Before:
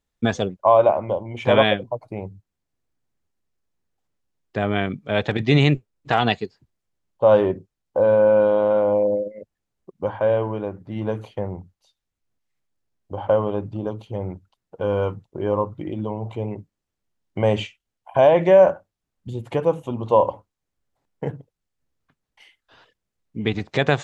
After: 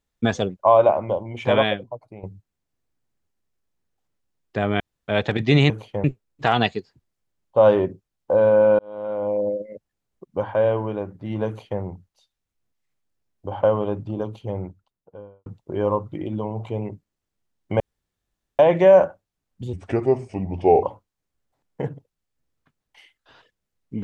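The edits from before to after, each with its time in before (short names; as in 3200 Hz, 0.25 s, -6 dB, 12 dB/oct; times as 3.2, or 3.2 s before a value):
1.23–2.23 fade out, to -11.5 dB
4.8–5.08 room tone
8.45–9.34 fade in
11.13–11.47 copy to 5.7
14.09–15.12 studio fade out
17.46–18.25 room tone
19.39–20.26 speed 79%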